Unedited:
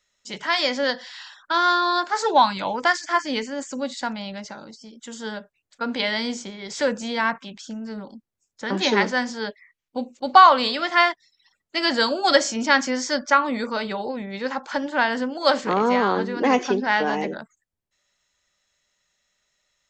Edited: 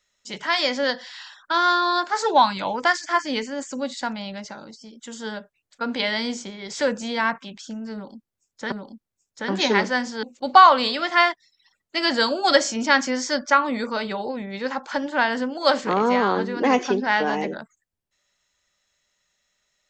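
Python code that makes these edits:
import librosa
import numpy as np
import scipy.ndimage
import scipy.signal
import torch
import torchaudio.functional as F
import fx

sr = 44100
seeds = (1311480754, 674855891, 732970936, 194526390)

y = fx.edit(x, sr, fx.repeat(start_s=7.94, length_s=0.78, count=2),
    fx.cut(start_s=9.45, length_s=0.58), tone=tone)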